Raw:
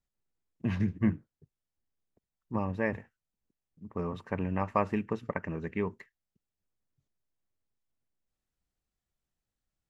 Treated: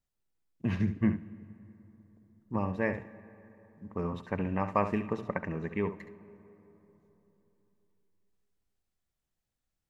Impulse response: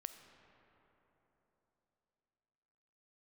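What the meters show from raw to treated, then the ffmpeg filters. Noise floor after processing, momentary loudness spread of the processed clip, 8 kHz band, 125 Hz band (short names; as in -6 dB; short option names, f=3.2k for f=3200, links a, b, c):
under -85 dBFS, 20 LU, n/a, 0.0 dB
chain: -filter_complex "[0:a]asplit=2[a][b];[1:a]atrim=start_sample=2205,adelay=69[c];[b][c]afir=irnorm=-1:irlink=0,volume=-6dB[d];[a][d]amix=inputs=2:normalize=0"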